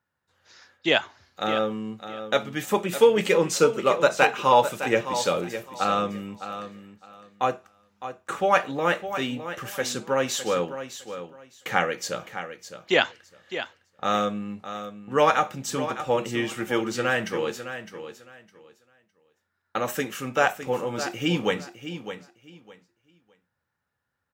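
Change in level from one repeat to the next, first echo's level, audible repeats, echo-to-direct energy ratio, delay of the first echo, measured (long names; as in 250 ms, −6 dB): −13.5 dB, −11.0 dB, 2, −11.0 dB, 609 ms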